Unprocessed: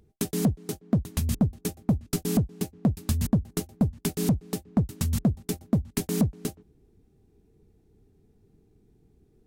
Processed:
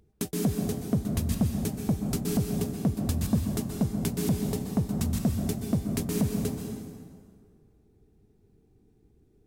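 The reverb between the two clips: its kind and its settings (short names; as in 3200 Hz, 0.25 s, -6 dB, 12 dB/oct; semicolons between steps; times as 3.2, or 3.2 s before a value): plate-style reverb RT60 2 s, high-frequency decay 0.7×, pre-delay 0.115 s, DRR 2 dB; gain -3 dB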